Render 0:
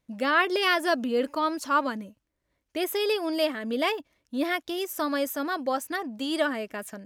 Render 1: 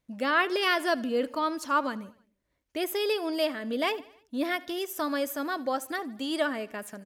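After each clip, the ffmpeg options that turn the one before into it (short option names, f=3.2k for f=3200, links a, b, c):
-af "aecho=1:1:77|154|231|308:0.0891|0.0499|0.0279|0.0157,volume=-2dB"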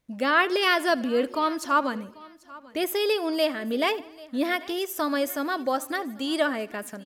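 -af "aecho=1:1:790|1580:0.0841|0.0151,volume=3.5dB"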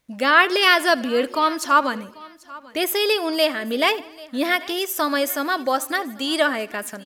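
-af "tiltshelf=f=670:g=-3.5,volume=4.5dB"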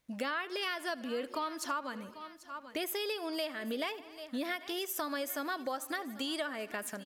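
-af "acompressor=threshold=-27dB:ratio=6,volume=-6.5dB"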